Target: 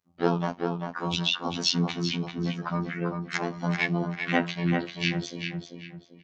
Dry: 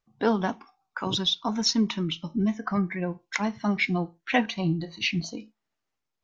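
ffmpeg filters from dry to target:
ffmpeg -i in.wav -filter_complex "[0:a]asplit=3[link_01][link_02][link_03];[link_02]asetrate=35002,aresample=44100,atempo=1.25992,volume=-3dB[link_04];[link_03]asetrate=52444,aresample=44100,atempo=0.840896,volume=-14dB[link_05];[link_01][link_04][link_05]amix=inputs=3:normalize=0,highpass=60,afftfilt=real='hypot(re,im)*cos(PI*b)':imag='0':win_size=2048:overlap=0.75,asplit=2[link_06][link_07];[link_07]adelay=392,lowpass=frequency=3300:poles=1,volume=-4.5dB,asplit=2[link_08][link_09];[link_09]adelay=392,lowpass=frequency=3300:poles=1,volume=0.36,asplit=2[link_10][link_11];[link_11]adelay=392,lowpass=frequency=3300:poles=1,volume=0.36,asplit=2[link_12][link_13];[link_13]adelay=392,lowpass=frequency=3300:poles=1,volume=0.36,asplit=2[link_14][link_15];[link_15]adelay=392,lowpass=frequency=3300:poles=1,volume=0.36[link_16];[link_08][link_10][link_12][link_14][link_16]amix=inputs=5:normalize=0[link_17];[link_06][link_17]amix=inputs=2:normalize=0" out.wav

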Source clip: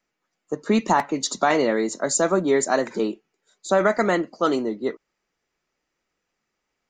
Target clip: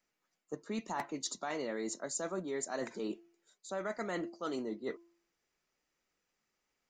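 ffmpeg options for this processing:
ffmpeg -i in.wav -af "highshelf=frequency=4100:gain=5.5,bandreject=frequency=340.9:width_type=h:width=4,bandreject=frequency=681.8:width_type=h:width=4,bandreject=frequency=1022.7:width_type=h:width=4,areverse,acompressor=threshold=-29dB:ratio=6,areverse,volume=-6.5dB" out.wav

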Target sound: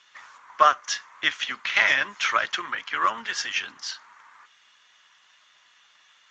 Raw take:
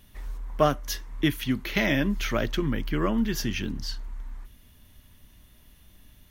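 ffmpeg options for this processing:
ffmpeg -i in.wav -af "highpass=frequency=1200:width_type=q:width=2.1,volume=5.5dB" -ar 16000 -c:a libspeex -b:a 17k out.spx

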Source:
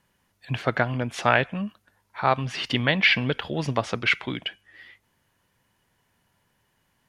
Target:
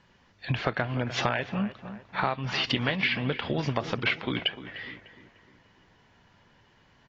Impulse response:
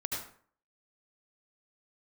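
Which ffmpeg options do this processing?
-filter_complex "[0:a]acompressor=threshold=-32dB:ratio=8,lowpass=frequency=5500:width=0.5412,lowpass=frequency=5500:width=1.3066,asplit=2[link_01][link_02];[link_02]adelay=300,lowpass=frequency=2100:poles=1,volume=-13dB,asplit=2[link_03][link_04];[link_04]adelay=300,lowpass=frequency=2100:poles=1,volume=0.48,asplit=2[link_05][link_06];[link_06]adelay=300,lowpass=frequency=2100:poles=1,volume=0.48,asplit=2[link_07][link_08];[link_08]adelay=300,lowpass=frequency=2100:poles=1,volume=0.48,asplit=2[link_09][link_10];[link_10]adelay=300,lowpass=frequency=2100:poles=1,volume=0.48[link_11];[link_03][link_05][link_07][link_09][link_11]amix=inputs=5:normalize=0[link_12];[link_01][link_12]amix=inputs=2:normalize=0,volume=7.5dB" -ar 24000 -c:a aac -b:a 24k

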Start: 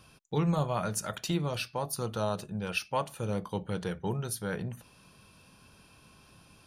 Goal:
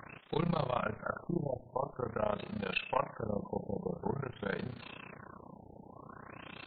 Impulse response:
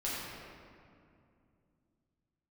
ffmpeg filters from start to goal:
-filter_complex "[0:a]aeval=exprs='val(0)+0.5*0.0112*sgn(val(0))':channel_layout=same,highpass=frequency=230:poles=1,aeval=exprs='0.158*(cos(1*acos(clip(val(0)/0.158,-1,1)))-cos(1*PI/2))+0.00316*(cos(2*acos(clip(val(0)/0.158,-1,1)))-cos(2*PI/2))+0.0178*(cos(3*acos(clip(val(0)/0.158,-1,1)))-cos(3*PI/2))+0.00794*(cos(4*acos(clip(val(0)/0.158,-1,1)))-cos(4*PI/2))+0.00708*(cos(5*acos(clip(val(0)/0.158,-1,1)))-cos(5*PI/2))':channel_layout=same,tremolo=f=30:d=0.947,asplit=2[link_01][link_02];[1:a]atrim=start_sample=2205,asetrate=48510,aresample=44100,lowshelf=frequency=330:gain=-11.5[link_03];[link_02][link_03]afir=irnorm=-1:irlink=0,volume=-23.5dB[link_04];[link_01][link_04]amix=inputs=2:normalize=0,afftfilt=real='re*lt(b*sr/1024,900*pow(4700/900,0.5+0.5*sin(2*PI*0.48*pts/sr)))':imag='im*lt(b*sr/1024,900*pow(4700/900,0.5+0.5*sin(2*PI*0.48*pts/sr)))':win_size=1024:overlap=0.75,volume=3dB"

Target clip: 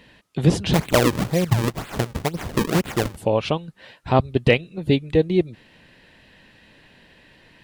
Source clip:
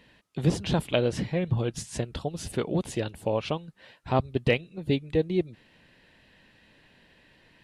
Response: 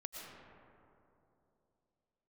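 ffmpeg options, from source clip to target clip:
-filter_complex "[0:a]asplit=3[link_01][link_02][link_03];[link_01]afade=type=out:start_time=0.73:duration=0.02[link_04];[link_02]acrusher=samples=36:mix=1:aa=0.000001:lfo=1:lforange=57.6:lforate=2,afade=type=in:start_time=0.73:duration=0.02,afade=type=out:start_time=3.16:duration=0.02[link_05];[link_03]afade=type=in:start_time=3.16:duration=0.02[link_06];[link_04][link_05][link_06]amix=inputs=3:normalize=0,volume=7dB"

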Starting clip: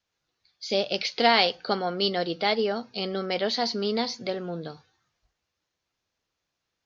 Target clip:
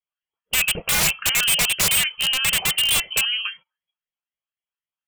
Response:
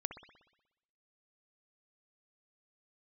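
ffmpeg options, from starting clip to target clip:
-af "afftfilt=real='re*pow(10,10/40*sin(2*PI*(0.69*log(max(b,1)*sr/1024/100)/log(2)-(-2.9)*(pts-256)/sr)))':imag='im*pow(10,10/40*sin(2*PI*(0.69*log(max(b,1)*sr/1024/100)/log(2)-(-2.9)*(pts-256)/sr)))':win_size=1024:overlap=0.75,aeval=exprs='0.299*(abs(mod(val(0)/0.299+3,4)-2)-1)':channel_layout=same,lowpass=frequency=2100:width_type=q:width=0.5098,lowpass=frequency=2100:width_type=q:width=0.6013,lowpass=frequency=2100:width_type=q:width=0.9,lowpass=frequency=2100:width_type=q:width=2.563,afreqshift=-2500,aeval=exprs='(mod(11.9*val(0)+1,2)-1)/11.9':channel_layout=same,lowshelf=frequency=150:width_type=q:width=3:gain=7,agate=range=-23dB:threshold=-54dB:ratio=16:detection=peak,equalizer=frequency=95:width_type=o:width=0.54:gain=-10.5,asetrate=59535,aresample=44100,volume=8.5dB"

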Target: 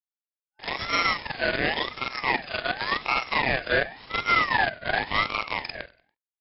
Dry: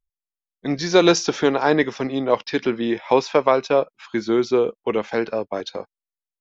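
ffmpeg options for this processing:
ffmpeg -i in.wav -filter_complex "[0:a]afftfilt=real='re':imag='-im':win_size=4096:overlap=0.75,aemphasis=mode=production:type=75fm,bandreject=frequency=60:width_type=h:width=6,bandreject=frequency=120:width_type=h:width=6,bandreject=frequency=180:width_type=h:width=6,bandreject=frequency=240:width_type=h:width=6,bandreject=frequency=300:width_type=h:width=6,bandreject=frequency=360:width_type=h:width=6,bandreject=frequency=420:width_type=h:width=6,bandreject=frequency=480:width_type=h:width=6,bandreject=frequency=540:width_type=h:width=6,bandreject=frequency=600:width_type=h:width=6,alimiter=limit=-15dB:level=0:latency=1:release=484,acrusher=bits=5:dc=4:mix=0:aa=0.000001,asplit=2[link_01][link_02];[link_02]asplit=3[link_03][link_04][link_05];[link_03]adelay=95,afreqshift=-42,volume=-21.5dB[link_06];[link_04]adelay=190,afreqshift=-84,volume=-29dB[link_07];[link_05]adelay=285,afreqshift=-126,volume=-36.6dB[link_08];[link_06][link_07][link_08]amix=inputs=3:normalize=0[link_09];[link_01][link_09]amix=inputs=2:normalize=0,afftfilt=real='re*between(b*sr/4096,330,3900)':imag='im*between(b*sr/4096,330,3900)':win_size=4096:overlap=0.75,aeval=exprs='val(0)*sin(2*PI*1400*n/s+1400*0.25/0.91*sin(2*PI*0.91*n/s))':channel_layout=same,volume=5.5dB" out.wav

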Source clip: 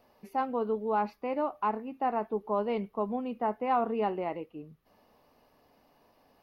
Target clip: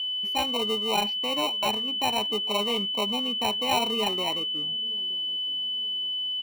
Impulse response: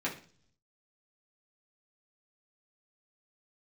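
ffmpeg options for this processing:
-filter_complex "[0:a]acrossover=split=430|1900[link_01][link_02][link_03];[link_01]aecho=1:1:925|1850|2775:0.141|0.0579|0.0237[link_04];[link_02]acrusher=samples=27:mix=1:aa=0.000001[link_05];[link_03]acontrast=58[link_06];[link_04][link_05][link_06]amix=inputs=3:normalize=0,aeval=exprs='val(0)+0.0141*sin(2*PI*3000*n/s)':channel_layout=same,equalizer=frequency=100:width_type=o:width=0.33:gain=10,equalizer=frequency=1000:width_type=o:width=0.33:gain=5,equalizer=frequency=3150:width_type=o:width=0.33:gain=11,volume=1dB"

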